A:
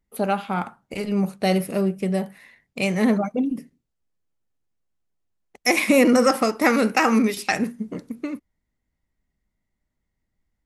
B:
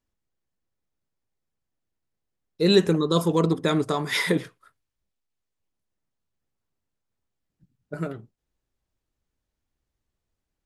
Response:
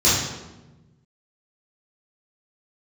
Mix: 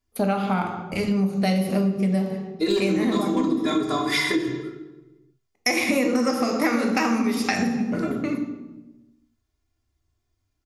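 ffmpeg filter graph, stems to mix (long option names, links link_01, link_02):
-filter_complex "[0:a]bandreject=frequency=7900:width=11,agate=range=-25dB:threshold=-38dB:ratio=16:detection=peak,volume=3dB,asplit=2[link_01][link_02];[link_02]volume=-23dB[link_03];[1:a]volume=11.5dB,asoftclip=hard,volume=-11.5dB,aecho=1:1:2.9:0.98,volume=-0.5dB,asplit=2[link_04][link_05];[link_05]volume=-22dB[link_06];[2:a]atrim=start_sample=2205[link_07];[link_03][link_06]amix=inputs=2:normalize=0[link_08];[link_08][link_07]afir=irnorm=-1:irlink=0[link_09];[link_01][link_04][link_09]amix=inputs=3:normalize=0,acompressor=threshold=-19dB:ratio=6"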